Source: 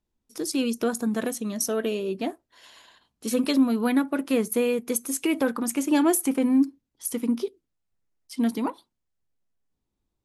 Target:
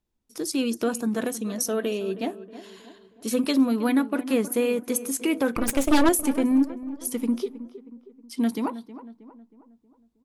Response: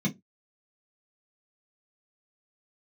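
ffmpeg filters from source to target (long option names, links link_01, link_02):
-filter_complex "[0:a]asettb=1/sr,asplit=3[link_01][link_02][link_03];[link_01]atrim=end=5.554[link_04];[link_02]atrim=start=5.55:end=6.09,asetpts=PTS-STARTPTS,afade=type=in:duration=0.004:curve=qsin,afade=type=out:start_time=0.536:duration=0.004:curve=qsin,aeval=exprs='0.266*(cos(1*acos(clip(val(0)/0.266,-1,1)))-cos(1*PI/2))+0.075*(cos(6*acos(clip(val(0)/0.266,-1,1)))-cos(6*PI/2))':channel_layout=same[link_05];[link_03]atrim=start=6.086[link_06];[link_04][link_05]acrossfade=duration=0.004:curve1=hsin:curve2=qsin[link_07];[link_07][link_06]acrossfade=duration=0.004:curve1=qsin:curve2=hsin,asplit=2[link_08][link_09];[link_09]adelay=317,lowpass=frequency=1600:poles=1,volume=-14dB,asplit=2[link_10][link_11];[link_11]adelay=317,lowpass=frequency=1600:poles=1,volume=0.5,asplit=2[link_12][link_13];[link_13]adelay=317,lowpass=frequency=1600:poles=1,volume=0.5,asplit=2[link_14][link_15];[link_15]adelay=317,lowpass=frequency=1600:poles=1,volume=0.5,asplit=2[link_16][link_17];[link_17]adelay=317,lowpass=frequency=1600:poles=1,volume=0.5[link_18];[link_10][link_12][link_14][link_16][link_18]amix=inputs=5:normalize=0[link_19];[link_08][link_19]amix=inputs=2:normalize=0"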